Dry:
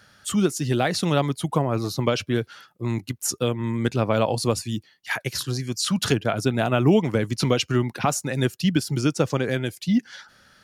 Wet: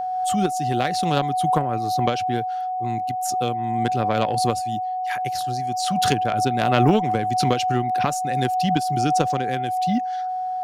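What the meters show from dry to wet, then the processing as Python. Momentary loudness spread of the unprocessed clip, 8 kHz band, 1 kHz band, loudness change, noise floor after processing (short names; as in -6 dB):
7 LU, -2.5 dB, +12.5 dB, +1.5 dB, -26 dBFS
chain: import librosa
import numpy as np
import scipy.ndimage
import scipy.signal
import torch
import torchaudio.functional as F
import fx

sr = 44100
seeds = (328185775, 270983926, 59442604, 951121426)

y = fx.cheby_harmonics(x, sr, harmonics=(3,), levels_db=(-15,), full_scale_db=-6.5)
y = y + 10.0 ** (-25.0 / 20.0) * np.sin(2.0 * np.pi * 740.0 * np.arange(len(y)) / sr)
y = fx.pre_swell(y, sr, db_per_s=24.0)
y = F.gain(torch.from_numpy(y), 1.5).numpy()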